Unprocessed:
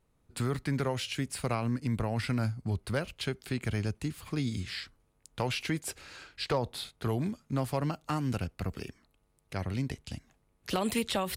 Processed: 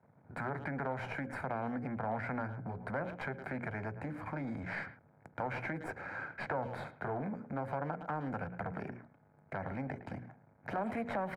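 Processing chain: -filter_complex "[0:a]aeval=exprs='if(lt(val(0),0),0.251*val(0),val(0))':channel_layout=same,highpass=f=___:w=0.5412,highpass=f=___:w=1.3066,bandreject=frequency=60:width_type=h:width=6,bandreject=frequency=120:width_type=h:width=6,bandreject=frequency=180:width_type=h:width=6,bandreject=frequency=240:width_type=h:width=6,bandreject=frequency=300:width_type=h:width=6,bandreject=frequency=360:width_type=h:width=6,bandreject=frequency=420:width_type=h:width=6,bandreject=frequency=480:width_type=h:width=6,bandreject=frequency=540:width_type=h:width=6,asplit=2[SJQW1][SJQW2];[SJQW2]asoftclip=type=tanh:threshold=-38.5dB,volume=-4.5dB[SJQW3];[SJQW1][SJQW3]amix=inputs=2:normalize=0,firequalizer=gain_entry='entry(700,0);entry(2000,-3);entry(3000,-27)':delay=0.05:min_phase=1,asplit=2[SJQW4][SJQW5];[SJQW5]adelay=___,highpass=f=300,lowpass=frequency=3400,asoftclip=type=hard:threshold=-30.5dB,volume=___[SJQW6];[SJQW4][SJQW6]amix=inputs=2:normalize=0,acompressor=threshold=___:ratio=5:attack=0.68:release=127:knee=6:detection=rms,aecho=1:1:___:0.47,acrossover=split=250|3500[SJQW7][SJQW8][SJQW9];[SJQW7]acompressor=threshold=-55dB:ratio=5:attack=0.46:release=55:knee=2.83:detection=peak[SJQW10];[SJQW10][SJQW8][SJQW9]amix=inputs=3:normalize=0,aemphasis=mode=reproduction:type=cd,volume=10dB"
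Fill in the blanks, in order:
110, 110, 110, -17dB, -40dB, 1.3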